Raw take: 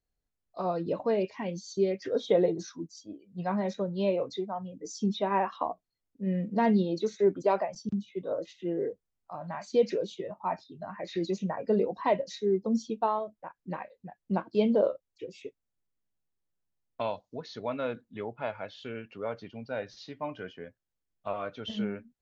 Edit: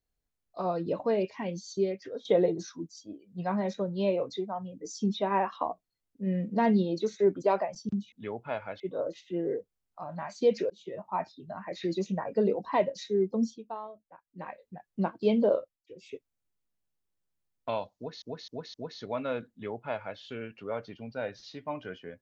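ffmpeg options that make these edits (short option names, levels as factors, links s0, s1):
-filter_complex "[0:a]asplit=12[s0][s1][s2][s3][s4][s5][s6][s7][s8][s9][s10][s11];[s0]atrim=end=2.25,asetpts=PTS-STARTPTS,afade=t=out:st=1.73:d=0.52:silence=0.177828[s12];[s1]atrim=start=2.25:end=8.122,asetpts=PTS-STARTPTS,afade=t=in:d=0.004:c=hsin:silence=0.177828[s13];[s2]atrim=start=18.048:end=18.732[s14];[s3]atrim=start=8.118:end=10.02,asetpts=PTS-STARTPTS,afade=t=out:st=1.898:d=0.004:c=hsin[s15];[s4]atrim=start=10.02:end=12.9,asetpts=PTS-STARTPTS,afade=t=in:d=0.28,afade=t=out:st=2.72:d=0.16:silence=0.281838[s16];[s5]atrim=start=12.9:end=13.68,asetpts=PTS-STARTPTS,volume=0.282[s17];[s6]atrim=start=13.68:end=15.16,asetpts=PTS-STARTPTS,afade=t=in:d=0.16:silence=0.281838,afade=t=out:st=1.21:d=0.27:silence=0.158489[s18];[s7]atrim=start=15.16:end=15.17,asetpts=PTS-STARTPTS,volume=0.158[s19];[s8]atrim=start=15.17:end=17.542,asetpts=PTS-STARTPTS,afade=t=in:d=0.27:silence=0.158489[s20];[s9]atrim=start=17.278:end=17.542[s21];[s10]atrim=start=17.278:end=17.542[s22];[s11]atrim=start=17.278[s23];[s12][s13]concat=n=2:v=0:a=1[s24];[s24][s14]acrossfade=d=0.004:c1=hsin:c2=hsin[s25];[s15][s16][s17][s18][s19][s20]concat=n=6:v=0:a=1[s26];[s25][s26]acrossfade=d=0.004:c1=hsin:c2=hsin[s27];[s27][s21]acrossfade=d=0.004:c1=hsin:c2=hsin[s28];[s28][s22]acrossfade=d=0.004:c1=hsin:c2=hsin[s29];[s29][s23]acrossfade=d=0.004:c1=hsin:c2=hsin"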